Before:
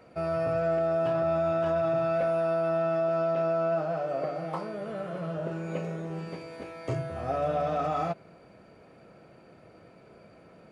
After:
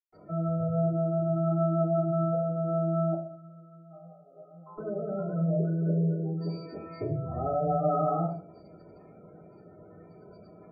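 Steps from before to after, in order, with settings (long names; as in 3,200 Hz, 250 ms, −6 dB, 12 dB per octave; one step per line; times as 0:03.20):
gate on every frequency bin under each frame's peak −15 dB strong
0:03.00–0:04.65: resonators tuned to a chord F3 minor, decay 0.52 s
convolution reverb RT60 0.50 s, pre-delay 125 ms, DRR −60 dB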